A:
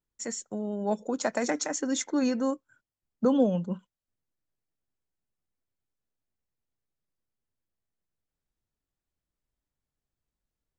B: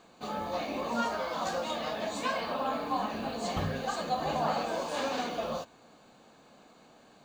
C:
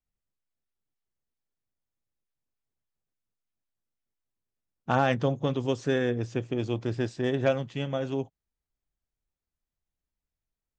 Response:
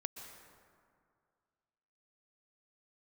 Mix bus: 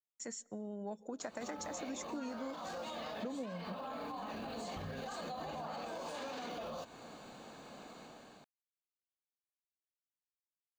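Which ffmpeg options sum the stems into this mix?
-filter_complex "[0:a]agate=range=-33dB:threshold=-51dB:ratio=3:detection=peak,volume=-9dB,asplit=2[link_01][link_02];[link_02]volume=-18.5dB[link_03];[1:a]acompressor=threshold=-41dB:ratio=3,adelay=1200,volume=-1.5dB,dynaudnorm=framelen=570:gausssize=3:maxgain=7dB,alimiter=level_in=9dB:limit=-24dB:level=0:latency=1:release=38,volume=-9dB,volume=0dB[link_04];[3:a]atrim=start_sample=2205[link_05];[link_03][link_05]afir=irnorm=-1:irlink=0[link_06];[link_01][link_04][link_06]amix=inputs=3:normalize=0,acompressor=threshold=-39dB:ratio=6"

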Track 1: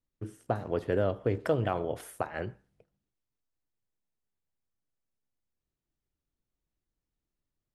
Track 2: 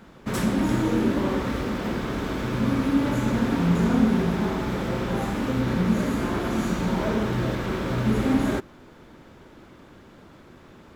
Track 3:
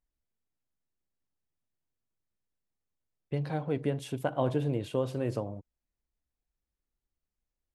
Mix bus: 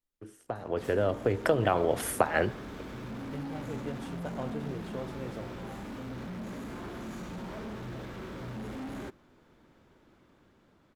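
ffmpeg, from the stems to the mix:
ffmpeg -i stem1.wav -i stem2.wav -i stem3.wav -filter_complex "[0:a]acrossover=split=130[link_01][link_02];[link_02]acompressor=threshold=-37dB:ratio=2.5[link_03];[link_01][link_03]amix=inputs=2:normalize=0,equalizer=frequency=110:width=0.66:gain=-11,dynaudnorm=framelen=120:gausssize=11:maxgain=12dB,volume=-2dB[link_04];[1:a]asoftclip=type=hard:threshold=-23.5dB,adelay=500,volume=-18.5dB[link_05];[2:a]volume=-14.5dB[link_06];[link_04][link_05][link_06]amix=inputs=3:normalize=0,dynaudnorm=framelen=650:gausssize=5:maxgain=5.5dB" out.wav

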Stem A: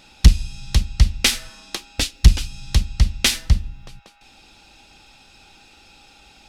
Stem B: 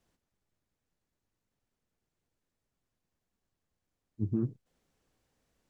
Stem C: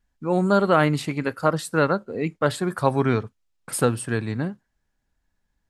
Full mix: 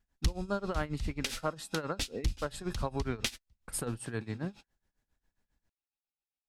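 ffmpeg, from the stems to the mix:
ffmpeg -i stem1.wav -i stem2.wav -i stem3.wav -filter_complex "[0:a]volume=-4.5dB[link_01];[1:a]volume=-12.5dB[link_02];[2:a]volume=-2.5dB,asplit=2[link_03][link_04];[link_04]apad=whole_len=285978[link_05];[link_01][link_05]sidechaingate=range=-47dB:threshold=-42dB:ratio=16:detection=peak[link_06];[link_06][link_02][link_03]amix=inputs=3:normalize=0,tremolo=f=7.4:d=0.85,acompressor=threshold=-34dB:ratio=2.5" out.wav

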